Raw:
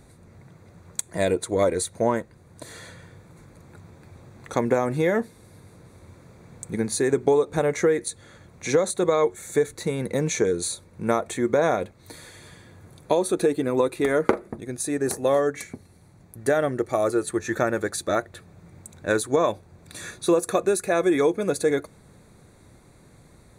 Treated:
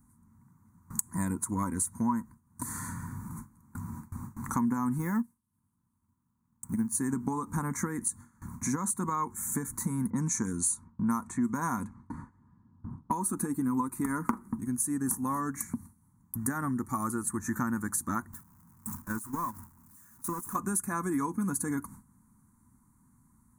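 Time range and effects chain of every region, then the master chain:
0:04.98–0:06.95: mu-law and A-law mismatch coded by A + expander for the loud parts, over −39 dBFS
0:10.10–0:13.11: parametric band 10,000 Hz +7 dB 2.1 octaves + low-pass that shuts in the quiet parts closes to 680 Hz, open at −17.5 dBFS
0:18.33–0:20.56: converter with a step at zero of −24 dBFS + noise gate −20 dBFS, range −18 dB + downward compressor 1.5 to 1, threshold −45 dBFS
whole clip: noise gate with hold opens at −38 dBFS; drawn EQ curve 160 Hz 0 dB, 240 Hz +9 dB, 410 Hz −20 dB, 630 Hz −26 dB, 970 Hz +6 dB, 1,900 Hz −10 dB, 3,200 Hz −29 dB, 6,500 Hz −1 dB, 14,000 Hz +11 dB; downward compressor 2.5 to 1, threshold −43 dBFS; level +8.5 dB

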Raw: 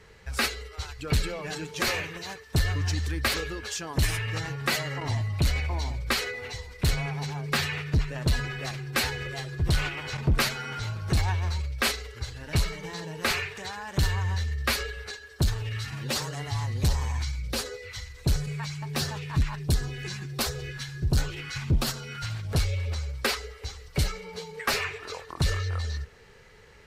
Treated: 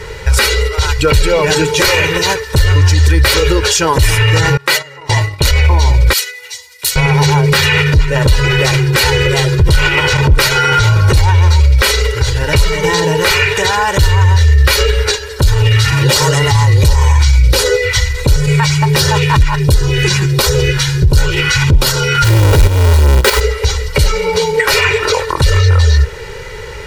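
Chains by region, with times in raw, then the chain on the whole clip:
0:04.57–0:05.51: noise gate −29 dBFS, range −23 dB + low-shelf EQ 220 Hz −11.5 dB
0:06.13–0:06.96: first difference + expander for the loud parts, over −48 dBFS
0:22.24–0:23.41: each half-wave held at its own peak + output level in coarse steps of 11 dB
whole clip: comb filter 2.1 ms, depth 74%; downward compressor, threshold −26 dBFS; boost into a limiter +24.5 dB; level −1 dB

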